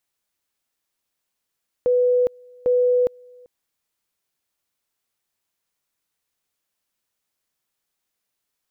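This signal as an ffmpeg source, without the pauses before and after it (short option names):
-f lavfi -i "aevalsrc='pow(10,(-14.5-29*gte(mod(t,0.8),0.41))/20)*sin(2*PI*495*t)':d=1.6:s=44100"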